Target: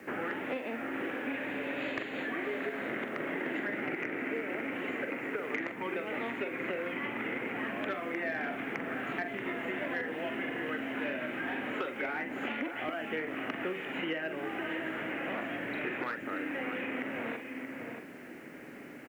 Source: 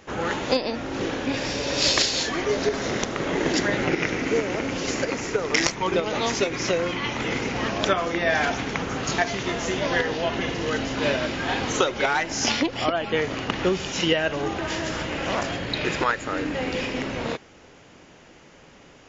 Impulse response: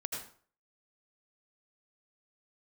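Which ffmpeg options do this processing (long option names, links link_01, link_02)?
-filter_complex "[0:a]asuperstop=centerf=5500:order=4:qfactor=0.63,acrossover=split=290 3300:gain=0.0631 1 0.141[link_01][link_02][link_03];[link_01][link_02][link_03]amix=inputs=3:normalize=0,asplit=2[link_04][link_05];[link_05]adelay=44,volume=-8.5dB[link_06];[link_04][link_06]amix=inputs=2:normalize=0,aecho=1:1:558|629:0.126|0.188,acontrast=87,equalizer=frequency=125:width_type=o:width=1:gain=10,equalizer=frequency=250:width_type=o:width=1:gain=9,equalizer=frequency=500:width_type=o:width=1:gain=-4,equalizer=frequency=1000:width_type=o:width=1:gain=-10,equalizer=frequency=2000:width_type=o:width=1:gain=5,equalizer=frequency=4000:width_type=o:width=1:gain=-6,acrusher=bits=9:mix=0:aa=0.000001,acrossover=split=630|1400|3400[link_07][link_08][link_09][link_10];[link_07]acompressor=threshold=-39dB:ratio=4[link_11];[link_08]acompressor=threshold=-39dB:ratio=4[link_12];[link_09]acompressor=threshold=-44dB:ratio=4[link_13];[link_10]acompressor=threshold=-46dB:ratio=4[link_14];[link_11][link_12][link_13][link_14]amix=inputs=4:normalize=0,volume=-2.5dB"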